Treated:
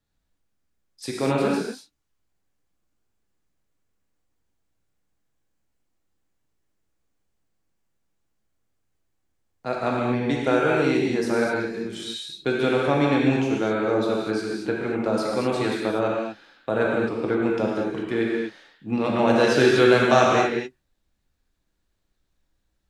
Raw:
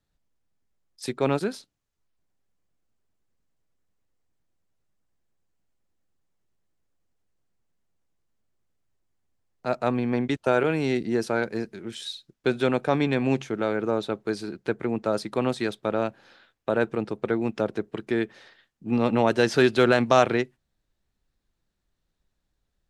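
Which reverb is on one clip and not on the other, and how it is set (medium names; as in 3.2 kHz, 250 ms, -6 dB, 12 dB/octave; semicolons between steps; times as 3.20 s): gated-style reverb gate 270 ms flat, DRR -3.5 dB; trim -1.5 dB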